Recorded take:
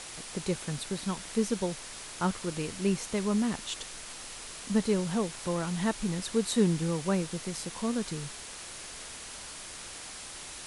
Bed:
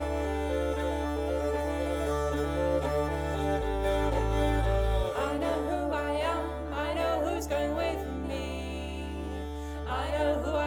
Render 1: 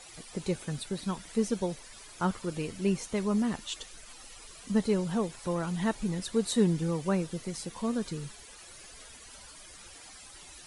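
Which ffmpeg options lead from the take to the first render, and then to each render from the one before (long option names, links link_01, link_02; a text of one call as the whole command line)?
ffmpeg -i in.wav -af "afftdn=noise_reduction=13:noise_floor=-44" out.wav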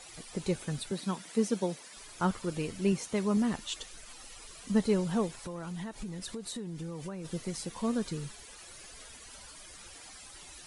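ffmpeg -i in.wav -filter_complex "[0:a]asettb=1/sr,asplit=3[link_01][link_02][link_03];[link_01]atrim=end=0.914[link_04];[link_02]atrim=start=0.91:end=1.97,asetpts=PTS-STARTPTS,afade=type=in:duration=0.004:curve=qsin,afade=type=out:start_time=1.056:duration=0.004:curve=qsin,highpass=frequency=150:width=0.5412,highpass=frequency=150:width=1.3066[link_05];[link_03]atrim=start=1.966[link_06];[link_04][link_05]acrossfade=duration=0.004:curve1=hsin:curve2=qsin[link_07];[link_07][link_06]acrossfade=duration=0.004:curve1=qsin:curve2=hsin,asettb=1/sr,asplit=3[link_08][link_09][link_10];[link_08]atrim=end=2.924[link_11];[link_09]atrim=start=2.92:end=3.37,asetpts=PTS-STARTPTS,afade=type=in:duration=0.004:curve=qsin,afade=type=out:start_time=0.446:duration=0.004:curve=qsin,highpass=68[link_12];[link_10]atrim=start=3.366[link_13];[link_11][link_12]acrossfade=duration=0.004:curve1=hsin:curve2=qsin[link_14];[link_14][link_13]acrossfade=duration=0.004:curve1=qsin:curve2=hsin,asplit=3[link_15][link_16][link_17];[link_15]afade=type=out:start_time=5.39:duration=0.02[link_18];[link_16]acompressor=threshold=-35dB:ratio=16:attack=3.2:release=140:knee=1:detection=peak,afade=type=in:start_time=5.39:duration=0.02,afade=type=out:start_time=7.24:duration=0.02[link_19];[link_17]afade=type=in:start_time=7.24:duration=0.02[link_20];[link_18][link_19][link_20]amix=inputs=3:normalize=0" out.wav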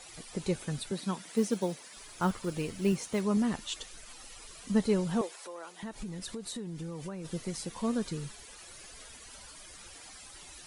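ffmpeg -i in.wav -filter_complex "[0:a]asettb=1/sr,asplit=3[link_01][link_02][link_03];[link_01]atrim=end=1.284[link_04];[link_02]atrim=start=1.28:end=3.21,asetpts=PTS-STARTPTS,afade=type=in:duration=0.004:curve=qsin,afade=type=out:start_time=1.926:duration=0.004:curve=qsin,acrusher=bits=7:mode=log:mix=0:aa=0.000001[link_05];[link_03]atrim=start=3.206[link_06];[link_04][link_05]acrossfade=duration=0.004:curve1=hsin:curve2=qsin[link_07];[link_07][link_06]acrossfade=duration=0.004:curve1=qsin:curve2=hsin,asettb=1/sr,asplit=3[link_08][link_09][link_10];[link_08]atrim=end=5.214[link_11];[link_09]atrim=start=5.21:end=5.83,asetpts=PTS-STARTPTS,afade=type=in:duration=0.004:curve=qsin,afade=type=out:start_time=0.616:duration=0.004:curve=qsin,highpass=frequency=390:width=0.5412,highpass=frequency=390:width=1.3066[link_12];[link_10]atrim=start=5.826[link_13];[link_11][link_12]acrossfade=duration=0.004:curve1=hsin:curve2=qsin[link_14];[link_14][link_13]acrossfade=duration=0.004:curve1=qsin:curve2=hsin" out.wav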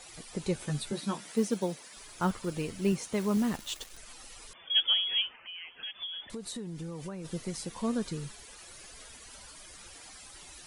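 ffmpeg -i in.wav -filter_complex "[0:a]asettb=1/sr,asplit=3[link_01][link_02][link_03];[link_01]atrim=end=0.584[link_04];[link_02]atrim=start=0.58:end=1.35,asetpts=PTS-STARTPTS,afade=type=in:duration=0.004:curve=qsin,afade=type=out:start_time=0.766:duration=0.004:curve=qsin,asplit=2[link_05][link_06];[link_06]adelay=14,volume=-4.5dB[link_07];[link_05][link_07]amix=inputs=2:normalize=0,atrim=end_sample=33957[link_08];[link_03]atrim=start=1.346[link_09];[link_04][link_08]acrossfade=duration=0.004:curve1=hsin:curve2=qsin[link_10];[link_10][link_09]acrossfade=duration=0.004:curve1=qsin:curve2=hsin,asettb=1/sr,asplit=3[link_11][link_12][link_13];[link_11]atrim=end=3.194[link_14];[link_12]atrim=start=3.19:end=3.97,asetpts=PTS-STARTPTS,afade=type=in:duration=0.004:curve=qsin,afade=type=out:start_time=0.776:duration=0.004:curve=qsin,acrusher=bits=8:dc=4:mix=0:aa=0.000001[link_15];[link_13]atrim=start=3.966[link_16];[link_14][link_15]acrossfade=duration=0.004:curve1=hsin:curve2=qsin[link_17];[link_17][link_16]acrossfade=duration=0.004:curve1=qsin:curve2=hsin,asettb=1/sr,asplit=3[link_18][link_19][link_20];[link_18]atrim=end=4.534[link_21];[link_19]atrim=start=4.53:end=6.3,asetpts=PTS-STARTPTS,afade=type=in:duration=0.004:curve=qsin,afade=type=out:start_time=1.766:duration=0.004:curve=qsin,lowpass=frequency=3000:width_type=q:width=0.5098,lowpass=frequency=3000:width_type=q:width=0.6013,lowpass=frequency=3000:width_type=q:width=0.9,lowpass=frequency=3000:width_type=q:width=2.563,afreqshift=-3500[link_22];[link_20]atrim=start=6.296[link_23];[link_21][link_22]acrossfade=duration=0.004:curve1=hsin:curve2=qsin[link_24];[link_24][link_23]acrossfade=duration=0.004:curve1=qsin:curve2=hsin" out.wav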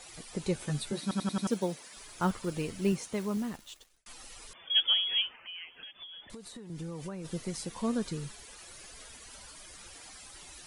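ffmpeg -i in.wav -filter_complex "[0:a]asettb=1/sr,asplit=3[link_01][link_02][link_03];[link_01]atrim=end=5.644[link_04];[link_02]atrim=start=5.64:end=6.7,asetpts=PTS-STARTPTS,afade=type=in:duration=0.004:curve=qsin,afade=type=out:start_time=1.056:duration=0.004:curve=qsin,acrossover=split=600|2400[link_05][link_06][link_07];[link_05]acompressor=threshold=-46dB:ratio=4[link_08];[link_06]acompressor=threshold=-55dB:ratio=4[link_09];[link_07]acompressor=threshold=-49dB:ratio=4[link_10];[link_08][link_09][link_10]amix=inputs=3:normalize=0[link_11];[link_03]atrim=start=6.696[link_12];[link_04][link_11]acrossfade=duration=0.004:curve1=hsin:curve2=qsin[link_13];[link_13][link_12]acrossfade=duration=0.004:curve1=qsin:curve2=hsin,asplit=7[link_14][link_15][link_16][link_17][link_18][link_19][link_20];[link_14]atrim=end=1.112[link_21];[link_15]atrim=start=1.018:end=1.112[link_22];[link_16]atrim=start=1.018:end=1.112[link_23];[link_17]atrim=start=1.018:end=1.112[link_24];[link_18]atrim=start=1.018:end=1.112[link_25];[link_19]atrim=start=1.468:end=4.06,asetpts=PTS-STARTPTS,afade=type=out:start_time=1.352:duration=1.24[link_26];[link_20]atrim=start=4.06,asetpts=PTS-STARTPTS,afade=type=in:duration=0.004:curve=hsin[link_27];[link_21][link_22]acrossfade=duration=0.004:curve1=hsin:curve2=hsin[link_28];[link_28][link_23]acrossfade=duration=0.004:curve1=hsin:curve2=hsin[link_29];[link_29][link_24]acrossfade=duration=0.004:curve1=hsin:curve2=hsin[link_30];[link_30][link_25]acrossfade=duration=0.004:curve1=hsin:curve2=hsin[link_31];[link_26][link_27]concat=n=2:v=0:a=1[link_32];[link_31][link_32]acrossfade=duration=0.004:curve1=hsin:curve2=hsin" out.wav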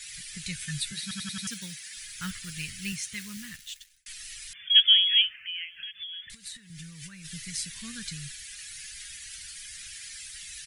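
ffmpeg -i in.wav -af "firequalizer=gain_entry='entry(130,0);entry(350,-26);entry(750,-29);entry(1700,8)':delay=0.05:min_phase=1" out.wav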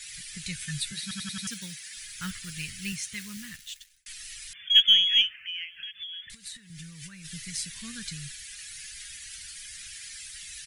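ffmpeg -i in.wav -af "aeval=exprs='0.473*(cos(1*acos(clip(val(0)/0.473,-1,1)))-cos(1*PI/2))+0.00596*(cos(6*acos(clip(val(0)/0.473,-1,1)))-cos(6*PI/2))':channel_layout=same" out.wav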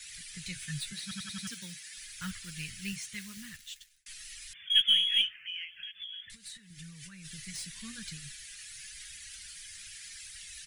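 ffmpeg -i in.wav -filter_complex "[0:a]flanger=delay=0.7:depth=9.4:regen=-42:speed=0.87:shape=triangular,acrossover=split=130|3800[link_01][link_02][link_03];[link_03]asoftclip=type=tanh:threshold=-36.5dB[link_04];[link_01][link_02][link_04]amix=inputs=3:normalize=0" out.wav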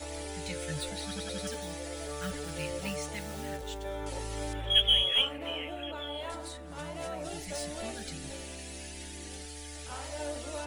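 ffmpeg -i in.wav -i bed.wav -filter_complex "[1:a]volume=-10dB[link_01];[0:a][link_01]amix=inputs=2:normalize=0" out.wav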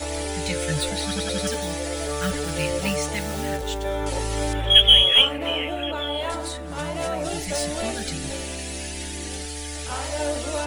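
ffmpeg -i in.wav -af "volume=11dB,alimiter=limit=-2dB:level=0:latency=1" out.wav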